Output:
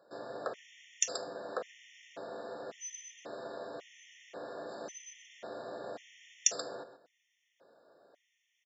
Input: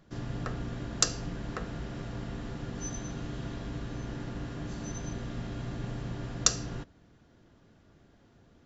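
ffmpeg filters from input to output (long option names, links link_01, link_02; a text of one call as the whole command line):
ffmpeg -i in.wav -af "highpass=frequency=540:width_type=q:width=3.5,aecho=1:1:130:0.266,afftfilt=real='re*gt(sin(2*PI*0.92*pts/sr)*(1-2*mod(floor(b*sr/1024/1800),2)),0)':imag='im*gt(sin(2*PI*0.92*pts/sr)*(1-2*mod(floor(b*sr/1024/1800),2)),0)':win_size=1024:overlap=0.75,volume=-2dB" out.wav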